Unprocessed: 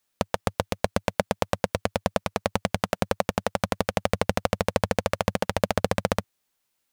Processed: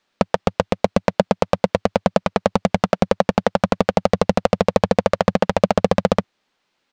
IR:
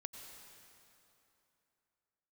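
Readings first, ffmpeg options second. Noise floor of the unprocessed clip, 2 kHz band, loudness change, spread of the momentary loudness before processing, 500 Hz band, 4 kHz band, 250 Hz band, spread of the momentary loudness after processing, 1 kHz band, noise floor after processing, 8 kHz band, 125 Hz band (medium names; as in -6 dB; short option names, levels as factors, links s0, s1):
-76 dBFS, +3.5 dB, +8.0 dB, 3 LU, +9.0 dB, +3.0 dB, +10.0 dB, 3 LU, +7.5 dB, -73 dBFS, -0.5 dB, +6.0 dB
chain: -af "firequalizer=gain_entry='entry(120,0);entry(180,8);entry(4200,4);entry(11000,-21)':delay=0.05:min_phase=1,acontrast=36,volume=0.891"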